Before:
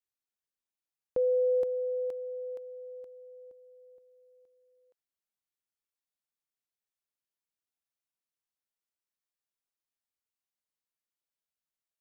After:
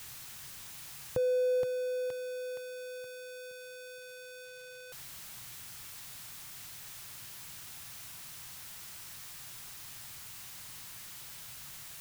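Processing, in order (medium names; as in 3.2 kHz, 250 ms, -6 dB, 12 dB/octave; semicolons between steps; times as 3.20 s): jump at every zero crossing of -43 dBFS; graphic EQ 125/250/500 Hz +11/-5/-8 dB; trim +5.5 dB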